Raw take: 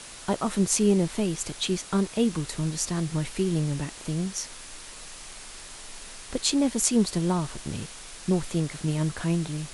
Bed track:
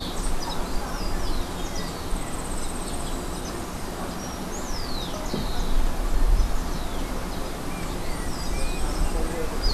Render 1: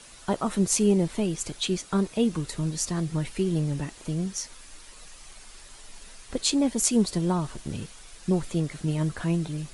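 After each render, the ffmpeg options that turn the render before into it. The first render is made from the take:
ffmpeg -i in.wav -af "afftdn=noise_reduction=8:noise_floor=-43" out.wav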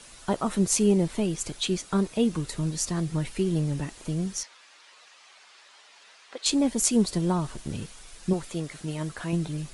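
ffmpeg -i in.wav -filter_complex "[0:a]asettb=1/sr,asplit=3[link_01][link_02][link_03];[link_01]atrim=end=4.434[link_04];[link_02]atrim=start=4.43:end=6.46,asetpts=PTS-STARTPTS,afade=type=in:duration=0.004:curve=qsin,afade=type=out:start_time=2.026:duration=0.004:curve=qsin,highpass=690,lowpass=4300[link_05];[link_03]atrim=start=6.456[link_06];[link_04][link_05]acrossfade=duration=0.004:curve1=hsin:curve2=qsin[link_07];[link_07][link_06]acrossfade=duration=0.004:curve1=qsin:curve2=hsin,asettb=1/sr,asplit=3[link_08][link_09][link_10];[link_08]atrim=end=8.334[link_11];[link_09]atrim=start=8.33:end=9.33,asetpts=PTS-STARTPTS,afade=type=in:duration=0.004:curve=qsin,afade=type=out:start_time=0.996:duration=0.004:curve=qsin,lowshelf=frequency=300:gain=-8.5[link_12];[link_10]atrim=start=9.326[link_13];[link_11][link_12]acrossfade=duration=0.004:curve1=hsin:curve2=qsin[link_14];[link_14][link_13]acrossfade=duration=0.004:curve1=qsin:curve2=hsin" out.wav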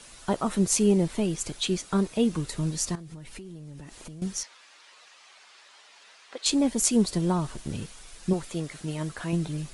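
ffmpeg -i in.wav -filter_complex "[0:a]asettb=1/sr,asplit=3[link_01][link_02][link_03];[link_01]atrim=end=2.954[link_04];[link_02]atrim=start=2.95:end=4.22,asetpts=PTS-STARTPTS,afade=type=in:duration=0.004:curve=qsin,afade=type=out:start_time=1.266:duration=0.004:curve=qsin,acompressor=threshold=-38dB:ratio=20:attack=3.2:release=140:knee=1:detection=peak[link_05];[link_03]atrim=start=4.216[link_06];[link_04][link_05]acrossfade=duration=0.004:curve1=hsin:curve2=qsin[link_07];[link_07][link_06]acrossfade=duration=0.004:curve1=qsin:curve2=hsin" out.wav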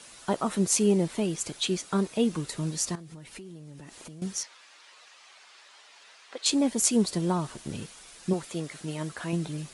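ffmpeg -i in.wav -af "highpass=frequency=160:poles=1" out.wav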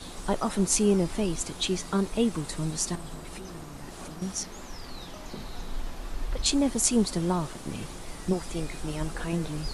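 ffmpeg -i in.wav -i bed.wav -filter_complex "[1:a]volume=-11.5dB[link_01];[0:a][link_01]amix=inputs=2:normalize=0" out.wav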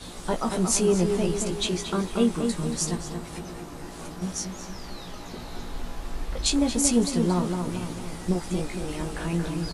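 ffmpeg -i in.wav -filter_complex "[0:a]asplit=2[link_01][link_02];[link_02]adelay=17,volume=-5.5dB[link_03];[link_01][link_03]amix=inputs=2:normalize=0,asplit=2[link_04][link_05];[link_05]adelay=229,lowpass=frequency=2500:poles=1,volume=-5dB,asplit=2[link_06][link_07];[link_07]adelay=229,lowpass=frequency=2500:poles=1,volume=0.52,asplit=2[link_08][link_09];[link_09]adelay=229,lowpass=frequency=2500:poles=1,volume=0.52,asplit=2[link_10][link_11];[link_11]adelay=229,lowpass=frequency=2500:poles=1,volume=0.52,asplit=2[link_12][link_13];[link_13]adelay=229,lowpass=frequency=2500:poles=1,volume=0.52,asplit=2[link_14][link_15];[link_15]adelay=229,lowpass=frequency=2500:poles=1,volume=0.52,asplit=2[link_16][link_17];[link_17]adelay=229,lowpass=frequency=2500:poles=1,volume=0.52[link_18];[link_04][link_06][link_08][link_10][link_12][link_14][link_16][link_18]amix=inputs=8:normalize=0" out.wav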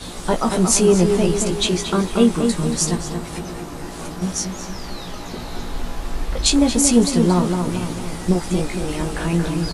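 ffmpeg -i in.wav -af "volume=7.5dB,alimiter=limit=-1dB:level=0:latency=1" out.wav

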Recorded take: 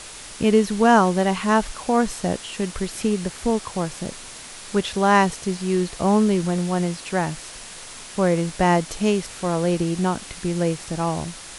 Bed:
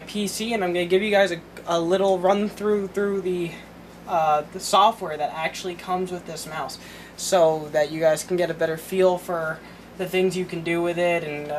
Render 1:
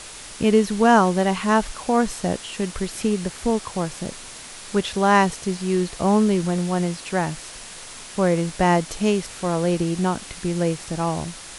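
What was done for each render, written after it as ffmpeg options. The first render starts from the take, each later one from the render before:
ffmpeg -i in.wav -af anull out.wav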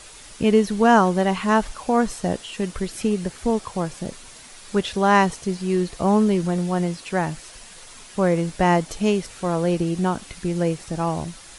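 ffmpeg -i in.wav -af "afftdn=noise_reduction=7:noise_floor=-39" out.wav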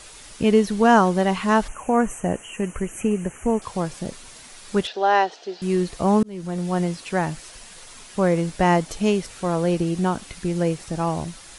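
ffmpeg -i in.wav -filter_complex "[0:a]asettb=1/sr,asplit=3[link_01][link_02][link_03];[link_01]atrim=end=1.684[link_04];[link_02]atrim=start=1.68:end=3.62,asetpts=PTS-STARTPTS,afade=type=in:duration=0.004:curve=qsin,afade=type=out:start_time=1.936:duration=0.004:curve=qsin,asuperstop=centerf=4300:order=12:qfactor=1.4[link_05];[link_03]atrim=start=3.616[link_06];[link_04][link_05]acrossfade=duration=0.004:curve1=hsin:curve2=qsin[link_07];[link_07][link_06]acrossfade=duration=0.004:curve1=qsin:curve2=hsin,asettb=1/sr,asplit=3[link_08][link_09][link_10];[link_08]atrim=end=4.874[link_11];[link_09]atrim=start=4.87:end=5.62,asetpts=PTS-STARTPTS,afade=type=in:duration=0.004:curve=qsin,afade=type=out:start_time=0.746:duration=0.004:curve=qsin,highpass=frequency=360:width=0.5412,highpass=frequency=360:width=1.3066,equalizer=frequency=510:width_type=q:width=4:gain=-3,equalizer=frequency=730:width_type=q:width=4:gain=6,equalizer=frequency=1100:width_type=q:width=4:gain=-10,equalizer=frequency=2200:width_type=q:width=4:gain=-8,lowpass=frequency=4800:width=0.5412,lowpass=frequency=4800:width=1.3066[link_12];[link_10]atrim=start=5.616[link_13];[link_11][link_12]acrossfade=duration=0.004:curve1=hsin:curve2=qsin[link_14];[link_14][link_13]acrossfade=duration=0.004:curve1=qsin:curve2=hsin,asplit=2[link_15][link_16];[link_15]atrim=end=6.23,asetpts=PTS-STARTPTS,afade=type=out:start_time=6.226:duration=0.004:curve=hsin[link_17];[link_16]atrim=start=6.23,asetpts=PTS-STARTPTS,afade=type=in:duration=0.52[link_18];[link_17][link_18]concat=n=2:v=0:a=1" out.wav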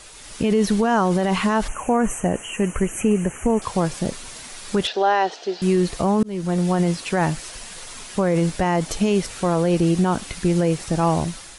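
ffmpeg -i in.wav -af "alimiter=limit=-16dB:level=0:latency=1:release=30,dynaudnorm=framelen=120:gausssize=5:maxgain=6dB" out.wav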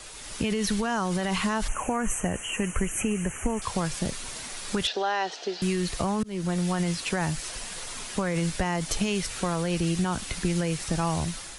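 ffmpeg -i in.wav -filter_complex "[0:a]acrossover=split=130|1200|3500[link_01][link_02][link_03][link_04];[link_02]acompressor=threshold=-28dB:ratio=6[link_05];[link_03]alimiter=level_in=0.5dB:limit=-24dB:level=0:latency=1:release=209,volume=-0.5dB[link_06];[link_01][link_05][link_06][link_04]amix=inputs=4:normalize=0" out.wav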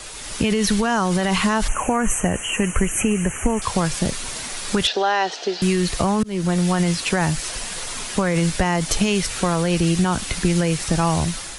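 ffmpeg -i in.wav -af "volume=7.5dB" out.wav

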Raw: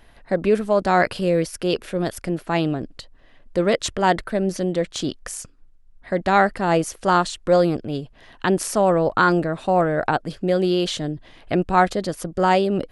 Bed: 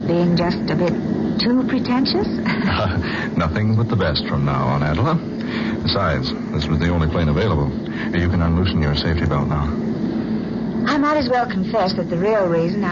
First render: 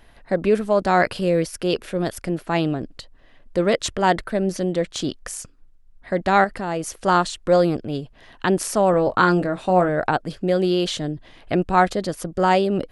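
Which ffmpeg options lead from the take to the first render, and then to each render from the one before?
ffmpeg -i in.wav -filter_complex "[0:a]asettb=1/sr,asplit=3[link_01][link_02][link_03];[link_01]atrim=end=6.444[link_04];[link_02]atrim=start=6.44:end=6.84,asetpts=PTS-STARTPTS,afade=type=in:duration=0.004:curve=qsin,afade=type=out:start_time=0.396:duration=0.004:curve=qsin,acompressor=threshold=-26dB:ratio=2:attack=3.2:release=140:knee=1:detection=peak[link_05];[link_03]atrim=start=6.836[link_06];[link_04][link_05]acrossfade=duration=0.004:curve1=hsin:curve2=qsin[link_07];[link_07][link_06]acrossfade=duration=0.004:curve1=qsin:curve2=hsin,asettb=1/sr,asplit=3[link_08][link_09][link_10];[link_08]atrim=end=8.914[link_11];[link_09]atrim=start=8.91:end=9.89,asetpts=PTS-STARTPTS,afade=type=in:duration=0.004:curve=qsin,afade=type=out:start_time=0.976:duration=0.004:curve=qsin,asplit=2[link_12][link_13];[link_13]adelay=22,volume=-8.5dB[link_14];[link_12][link_14]amix=inputs=2:normalize=0,atrim=end_sample=43218[link_15];[link_10]atrim=start=9.886[link_16];[link_11][link_15]acrossfade=duration=0.004:curve1=hsin:curve2=qsin[link_17];[link_17][link_16]acrossfade=duration=0.004:curve1=qsin:curve2=hsin" out.wav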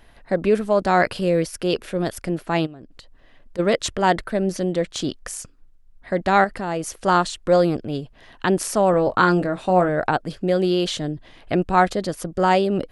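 ffmpeg -i in.wav -filter_complex "[0:a]asplit=3[link_01][link_02][link_03];[link_01]afade=type=out:start_time=2.65:duration=0.02[link_04];[link_02]acompressor=threshold=-41dB:ratio=3:attack=3.2:release=140:knee=1:detection=peak,afade=type=in:start_time=2.65:duration=0.02,afade=type=out:start_time=3.58:duration=0.02[link_05];[link_03]afade=type=in:start_time=3.58:duration=0.02[link_06];[link_04][link_05][link_06]amix=inputs=3:normalize=0" out.wav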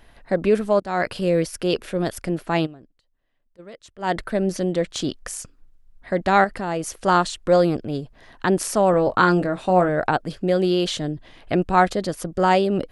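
ffmpeg -i in.wav -filter_complex "[0:a]asettb=1/sr,asplit=3[link_01][link_02][link_03];[link_01]atrim=end=7.904[link_04];[link_02]atrim=start=7.9:end=8.52,asetpts=PTS-STARTPTS,afade=type=in:duration=0.004:curve=qsin,afade=type=out:start_time=0.616:duration=0.004:curve=qsin,equalizer=frequency=2900:width_type=o:width=0.47:gain=-6[link_05];[link_03]atrim=start=8.516[link_06];[link_04][link_05]acrossfade=duration=0.004:curve1=hsin:curve2=qsin[link_07];[link_07][link_06]acrossfade=duration=0.004:curve1=qsin:curve2=hsin,asplit=4[link_08][link_09][link_10][link_11];[link_08]atrim=end=0.8,asetpts=PTS-STARTPTS,afade=type=out:start_time=0.796:duration=0.004:curve=hsin:silence=0.133352[link_12];[link_09]atrim=start=0.8:end=2.93,asetpts=PTS-STARTPTS,afade=type=in:duration=0.61:curve=qsin:silence=0.133352,afade=type=out:start_time=1.89:duration=0.24:silence=0.0794328[link_13];[link_10]atrim=start=2.93:end=3.97,asetpts=PTS-STARTPTS,volume=-22dB[link_14];[link_11]atrim=start=3.97,asetpts=PTS-STARTPTS,afade=type=in:duration=0.24:silence=0.0794328[link_15];[link_12][link_13][link_14][link_15]concat=n=4:v=0:a=1" out.wav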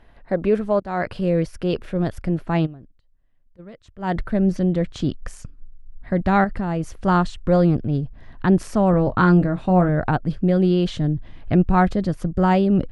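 ffmpeg -i in.wav -af "lowpass=frequency=1700:poles=1,asubboost=boost=4:cutoff=210" out.wav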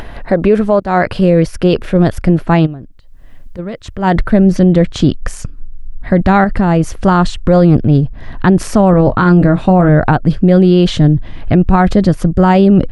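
ffmpeg -i in.wav -af "acompressor=mode=upward:threshold=-29dB:ratio=2.5,alimiter=level_in=13dB:limit=-1dB:release=50:level=0:latency=1" out.wav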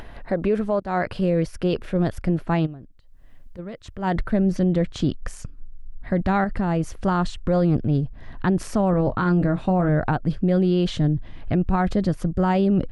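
ffmpeg -i in.wav -af "volume=-11.5dB" out.wav

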